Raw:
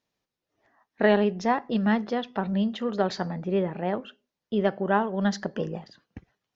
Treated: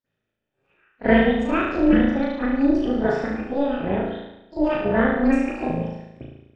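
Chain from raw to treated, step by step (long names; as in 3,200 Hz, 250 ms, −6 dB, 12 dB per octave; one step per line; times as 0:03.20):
pitch shifter swept by a sawtooth +8 semitones, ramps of 941 ms
flutter between parallel walls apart 6.2 metres, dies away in 0.94 s
convolution reverb, pre-delay 43 ms, DRR −15 dB
amplitude modulation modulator 280 Hz, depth 50%
level −11 dB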